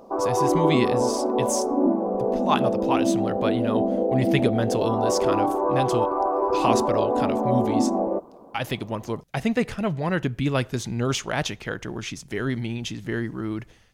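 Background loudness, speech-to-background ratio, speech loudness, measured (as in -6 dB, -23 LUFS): -23.5 LUFS, -4.5 dB, -28.0 LUFS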